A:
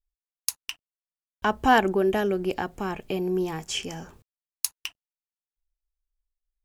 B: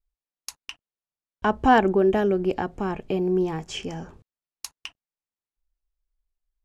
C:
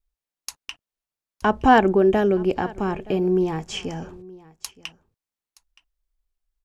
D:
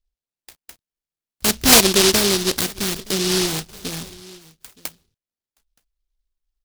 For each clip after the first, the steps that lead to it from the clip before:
Bessel low-pass filter 6,800 Hz, order 2; tilt shelving filter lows +4 dB, about 1,300 Hz
single-tap delay 921 ms −22 dB; level +2.5 dB
auto-filter low-pass saw up 0.58 Hz 670–3,500 Hz; short delay modulated by noise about 4,200 Hz, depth 0.38 ms

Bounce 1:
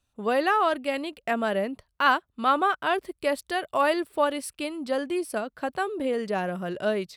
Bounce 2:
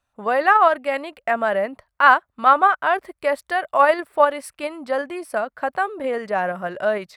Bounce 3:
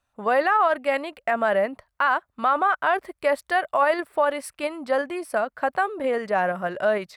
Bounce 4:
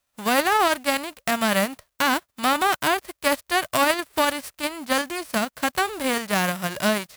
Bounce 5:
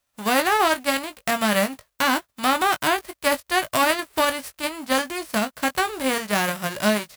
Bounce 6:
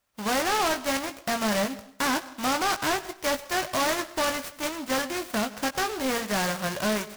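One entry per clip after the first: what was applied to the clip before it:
flat-topped bell 1,100 Hz +10 dB 2.3 octaves; in parallel at −1.5 dB: output level in coarse steps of 12 dB; on the sum: level −5.5 dB
brickwall limiter −11.5 dBFS, peak gain reduction 10 dB
spectral envelope flattened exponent 0.3
double-tracking delay 19 ms −9 dB
soft clipping −21 dBFS, distortion −9 dB; dense smooth reverb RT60 0.71 s, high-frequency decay 0.8×, pre-delay 80 ms, DRR 16 dB; short delay modulated by noise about 3,300 Hz, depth 0.058 ms

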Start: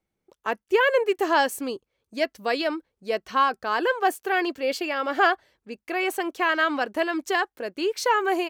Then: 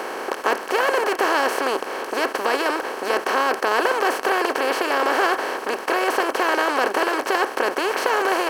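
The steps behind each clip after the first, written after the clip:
compressor on every frequency bin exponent 0.2
level −6.5 dB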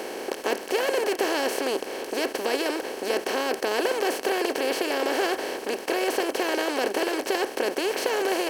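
parametric band 1,200 Hz −14 dB 1.2 octaves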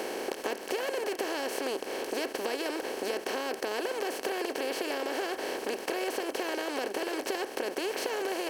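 downward compressor, threshold −28 dBFS, peak gain reduction 8.5 dB
level −1 dB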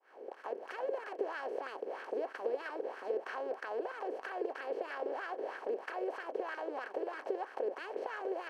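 fade in at the beginning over 0.65 s
LFO wah 3.1 Hz 430–1,500 Hz, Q 3.5
level +1.5 dB

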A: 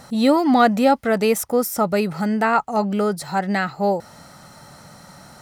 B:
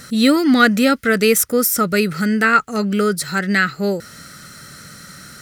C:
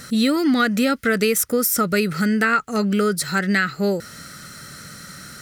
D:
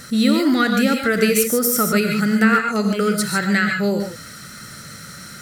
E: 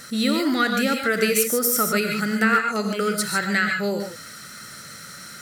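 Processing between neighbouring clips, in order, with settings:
drawn EQ curve 450 Hz 0 dB, 860 Hz −18 dB, 1,400 Hz +6 dB, 2,700 Hz +4 dB, 14,000 Hz +7 dB; level +3.5 dB
downward compressor, threshold −15 dBFS, peak gain reduction 8 dB
reverb whose tail is shaped and stops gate 170 ms rising, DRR 3 dB
low-shelf EQ 230 Hz −10 dB; level −1.5 dB

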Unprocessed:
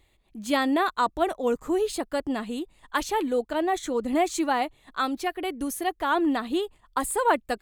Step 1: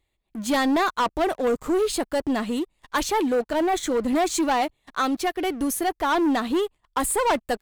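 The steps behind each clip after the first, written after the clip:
leveller curve on the samples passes 3
level −5 dB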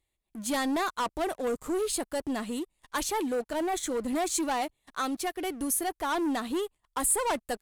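parametric band 10,000 Hz +9.5 dB 1.1 octaves
level −7.5 dB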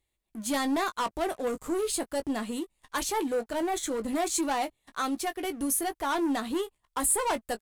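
double-tracking delay 18 ms −10 dB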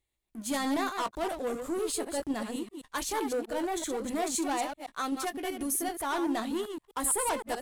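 delay that plays each chunk backwards 128 ms, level −6.5 dB
level −3 dB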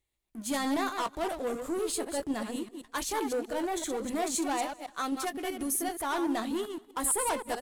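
repeating echo 198 ms, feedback 47%, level −24 dB

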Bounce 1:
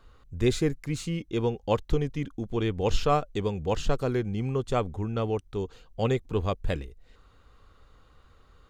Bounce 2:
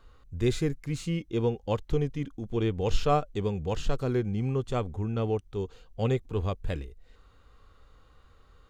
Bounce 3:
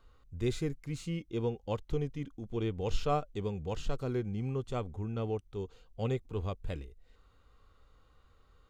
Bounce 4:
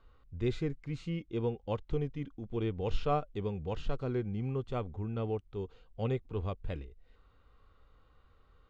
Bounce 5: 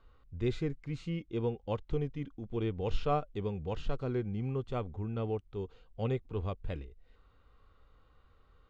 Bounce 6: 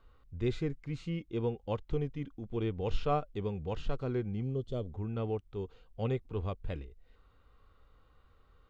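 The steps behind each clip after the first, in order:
harmonic and percussive parts rebalanced harmonic +6 dB; level −5 dB
notch filter 1,700 Hz, Q 14; level −6 dB
low-pass filter 3,600 Hz 12 dB per octave
no processing that can be heard
gain on a spectral selection 0:04.43–0:04.91, 700–2,900 Hz −13 dB

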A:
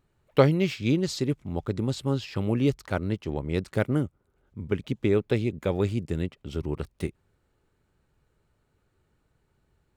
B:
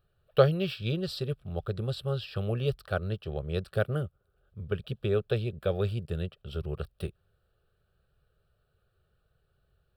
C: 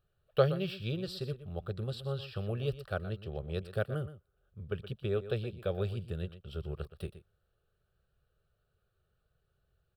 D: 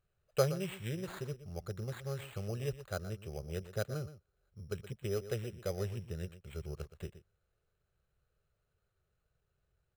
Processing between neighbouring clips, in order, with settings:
phaser with its sweep stopped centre 1,400 Hz, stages 8
single-tap delay 121 ms −13.5 dB; level −5 dB
bad sample-rate conversion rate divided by 8×, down none, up hold; level −3.5 dB

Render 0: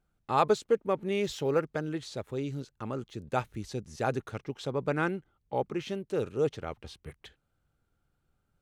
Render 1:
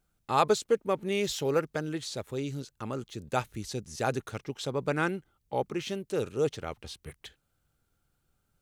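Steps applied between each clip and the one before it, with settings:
high-shelf EQ 3,800 Hz +10 dB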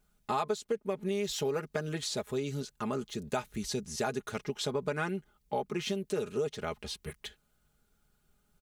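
comb filter 4.8 ms, depth 64%
downward compressor 6 to 1, threshold −31 dBFS, peak gain reduction 14.5 dB
level +2 dB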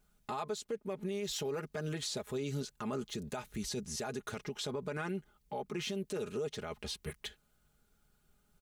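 brickwall limiter −29 dBFS, peak gain reduction 10.5 dB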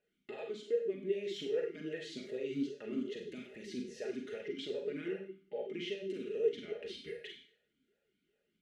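four-comb reverb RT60 0.55 s, combs from 32 ms, DRR 1 dB
formant filter swept between two vowels e-i 2.5 Hz
level +7.5 dB

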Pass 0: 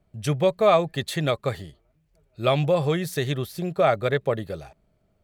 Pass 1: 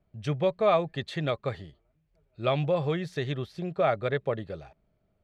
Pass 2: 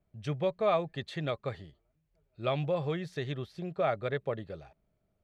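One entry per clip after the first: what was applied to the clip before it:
low-pass filter 4,100 Hz 12 dB per octave; level −5 dB
floating-point word with a short mantissa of 8 bits; level −4.5 dB

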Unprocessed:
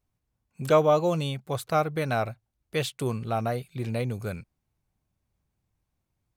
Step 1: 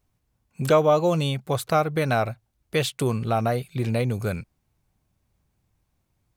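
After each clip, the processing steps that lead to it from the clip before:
downward compressor 1.5 to 1, threshold −30 dBFS, peak gain reduction 6 dB
level +7 dB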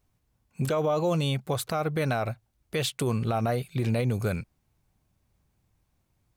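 brickwall limiter −18.5 dBFS, peak gain reduction 11 dB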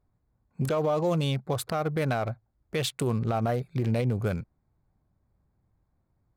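adaptive Wiener filter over 15 samples

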